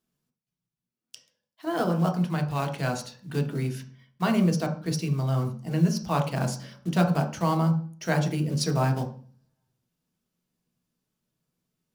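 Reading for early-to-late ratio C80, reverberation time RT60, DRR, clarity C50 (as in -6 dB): 14.5 dB, 0.45 s, 3.0 dB, 10.0 dB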